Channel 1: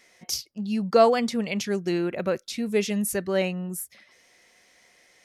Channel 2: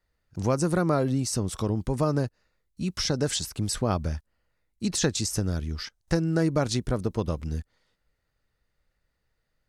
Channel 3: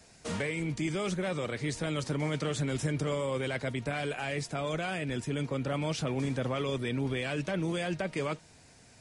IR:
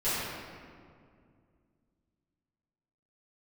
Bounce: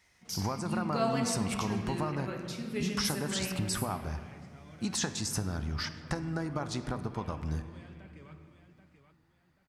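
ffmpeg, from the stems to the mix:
-filter_complex "[0:a]volume=-11dB,asplit=2[link_01][link_02];[link_02]volume=-10.5dB[link_03];[1:a]equalizer=frequency=820:width=0.79:gain=15,acompressor=threshold=-29dB:ratio=4,volume=-0.5dB,asplit=2[link_04][link_05];[link_05]volume=-20dB[link_06];[2:a]lowpass=frequency=1600:poles=1,volume=-17.5dB,asplit=3[link_07][link_08][link_09];[link_08]volume=-15dB[link_10];[link_09]volume=-8.5dB[link_11];[3:a]atrim=start_sample=2205[link_12];[link_03][link_06][link_10]amix=inputs=3:normalize=0[link_13];[link_13][link_12]afir=irnorm=-1:irlink=0[link_14];[link_11]aecho=0:1:783|1566|2349|3132:1|0.29|0.0841|0.0244[link_15];[link_01][link_04][link_07][link_14][link_15]amix=inputs=5:normalize=0,highpass=40,equalizer=frequency=530:width_type=o:width=1.2:gain=-10.5"

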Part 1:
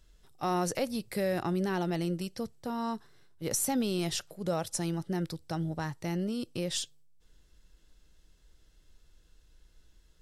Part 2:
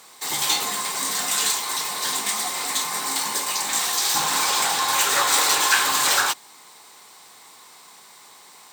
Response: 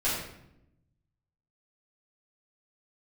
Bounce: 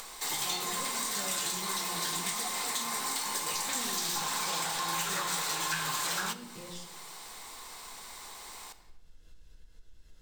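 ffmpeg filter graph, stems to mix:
-filter_complex "[0:a]acompressor=mode=upward:threshold=-49dB:ratio=2.5,volume=-18dB,asplit=2[link_01][link_02];[link_02]volume=-10dB[link_03];[1:a]acompressor=threshold=-26dB:ratio=6,volume=-5dB,asplit=2[link_04][link_05];[link_05]volume=-19.5dB[link_06];[2:a]atrim=start_sample=2205[link_07];[link_03][link_06]amix=inputs=2:normalize=0[link_08];[link_08][link_07]afir=irnorm=-1:irlink=0[link_09];[link_01][link_04][link_09]amix=inputs=3:normalize=0,acompressor=mode=upward:threshold=-38dB:ratio=2.5"

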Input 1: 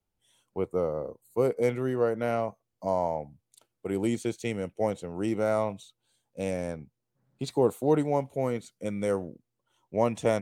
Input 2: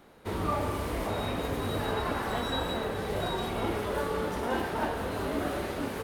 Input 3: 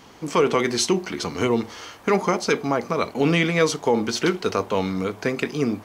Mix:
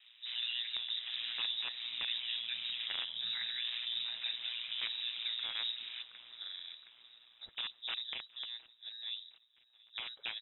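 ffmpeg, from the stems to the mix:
ffmpeg -i stem1.wav -i stem2.wav -i stem3.wav -filter_complex "[0:a]highpass=61,aeval=exprs='(mod(7.08*val(0)+1,2)-1)/7.08':channel_layout=same,volume=-12dB,asplit=3[link_01][link_02][link_03];[link_02]volume=-23.5dB[link_04];[1:a]highshelf=frequency=2400:gain=10,volume=-5.5dB,asplit=3[link_05][link_06][link_07];[link_05]atrim=end=2.94,asetpts=PTS-STARTPTS,afade=type=out:start_time=2.936:duration=0.004:curve=hsin[link_08];[link_06]atrim=start=2.94:end=3.61,asetpts=PTS-STARTPTS,volume=0[link_09];[link_07]atrim=start=3.61,asetpts=PTS-STARTPTS,afade=type=in:duration=0.004:curve=hsin[link_10];[link_08][link_09][link_10]concat=n=3:v=0:a=1,asplit=2[link_11][link_12];[link_12]volume=-19.5dB[link_13];[2:a]volume=-13dB,asplit=2[link_14][link_15];[link_15]volume=-17.5dB[link_16];[link_03]apad=whole_len=265971[link_17];[link_11][link_17]sidechaincompress=threshold=-44dB:ratio=8:attack=25:release=456[link_18];[link_18][link_14]amix=inputs=2:normalize=0,lowpass=frequency=2100:width=0.5412,lowpass=frequency=2100:width=1.3066,alimiter=level_in=3.5dB:limit=-24dB:level=0:latency=1:release=20,volume=-3.5dB,volume=0dB[link_19];[link_04][link_13][link_16]amix=inputs=3:normalize=0,aecho=0:1:718|1436|2154|2872|3590|4308|5026:1|0.49|0.24|0.118|0.0576|0.0282|0.0138[link_20];[link_01][link_19][link_20]amix=inputs=3:normalize=0,highpass=110,aeval=exprs='val(0)*sin(2*PI*59*n/s)':channel_layout=same,lowpass=frequency=3400:width_type=q:width=0.5098,lowpass=frequency=3400:width_type=q:width=0.6013,lowpass=frequency=3400:width_type=q:width=0.9,lowpass=frequency=3400:width_type=q:width=2.563,afreqshift=-4000" out.wav

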